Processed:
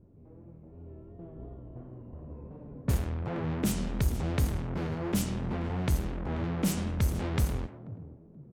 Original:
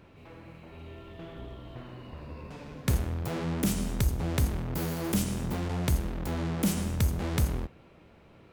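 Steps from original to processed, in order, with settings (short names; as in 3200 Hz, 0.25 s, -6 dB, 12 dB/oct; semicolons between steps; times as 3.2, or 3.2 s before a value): frequency-shifting echo 0.483 s, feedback 36%, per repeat +40 Hz, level -15 dB; vibrato 2.8 Hz 61 cents; low-pass opened by the level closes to 310 Hz, open at -22.5 dBFS; gain -1 dB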